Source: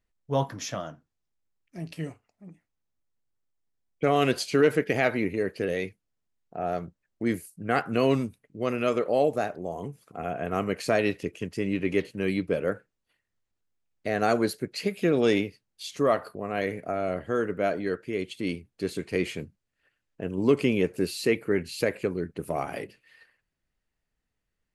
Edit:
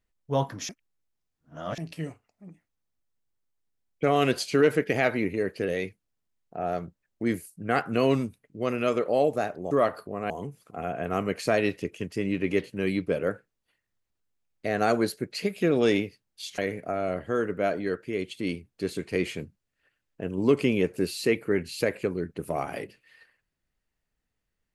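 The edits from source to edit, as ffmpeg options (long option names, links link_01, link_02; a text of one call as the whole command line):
ffmpeg -i in.wav -filter_complex "[0:a]asplit=6[link_01][link_02][link_03][link_04][link_05][link_06];[link_01]atrim=end=0.692[link_07];[link_02]atrim=start=0.688:end=1.782,asetpts=PTS-STARTPTS,areverse[link_08];[link_03]atrim=start=1.778:end=9.712[link_09];[link_04]atrim=start=15.988:end=16.582[link_10];[link_05]atrim=start=9.708:end=15.992[link_11];[link_06]atrim=start=16.578[link_12];[link_07][link_08]acrossfade=duration=0.004:curve1=hsin:curve2=hsin[link_13];[link_13][link_09]acrossfade=duration=0.004:curve1=hsin:curve2=hsin[link_14];[link_14][link_10]acrossfade=duration=0.004:curve1=hsin:curve2=hsin[link_15];[link_15][link_11]acrossfade=duration=0.004:curve1=hsin:curve2=hsin[link_16];[link_16][link_12]acrossfade=duration=0.004:curve1=hsin:curve2=hsin" out.wav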